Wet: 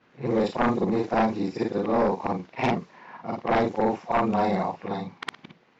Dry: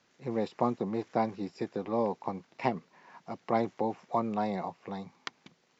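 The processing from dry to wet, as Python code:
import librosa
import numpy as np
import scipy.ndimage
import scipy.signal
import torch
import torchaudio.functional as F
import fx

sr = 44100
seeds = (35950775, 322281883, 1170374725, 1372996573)

y = fx.frame_reverse(x, sr, frame_ms=118.0)
y = fx.env_lowpass(y, sr, base_hz=2400.0, full_db=-31.0)
y = fx.fold_sine(y, sr, drive_db=9, ceiling_db=-16.0)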